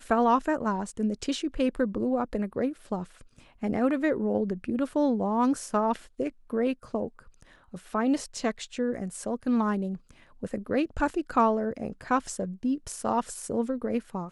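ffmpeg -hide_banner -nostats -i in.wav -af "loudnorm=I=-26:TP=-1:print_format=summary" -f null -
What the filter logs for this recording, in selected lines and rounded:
Input Integrated:    -28.9 LUFS
Input True Peak:     -11.5 dBTP
Input LRA:             2.6 LU
Input Threshold:     -39.2 LUFS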